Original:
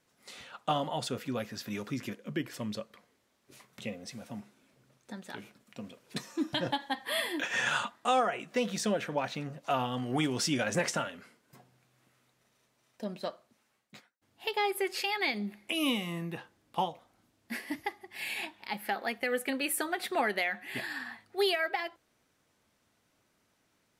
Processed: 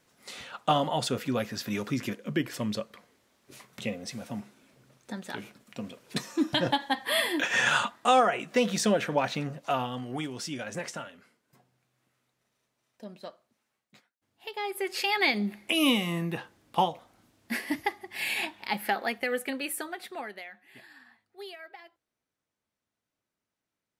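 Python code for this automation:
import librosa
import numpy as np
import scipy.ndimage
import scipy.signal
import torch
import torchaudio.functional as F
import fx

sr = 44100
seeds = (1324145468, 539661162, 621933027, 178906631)

y = fx.gain(x, sr, db=fx.line((9.44, 5.5), (10.32, -6.0), (14.52, -6.0), (15.16, 6.0), (18.78, 6.0), (19.81, -3.0), (20.62, -15.0)))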